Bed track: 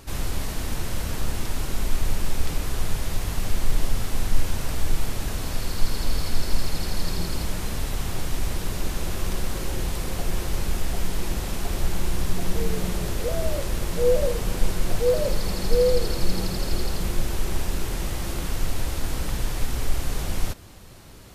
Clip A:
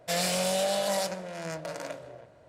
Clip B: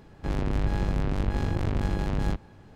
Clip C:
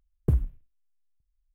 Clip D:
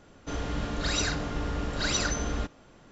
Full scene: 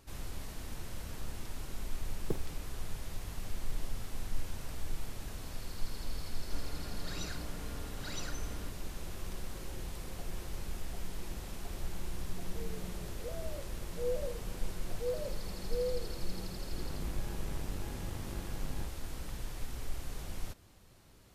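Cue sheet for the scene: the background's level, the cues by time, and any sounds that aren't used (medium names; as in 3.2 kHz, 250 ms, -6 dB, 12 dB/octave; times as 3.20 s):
bed track -14.5 dB
2.02 s: add C -2.5 dB + high-pass 290 Hz
6.23 s: add D -15.5 dB
16.52 s: add B -16 dB
not used: A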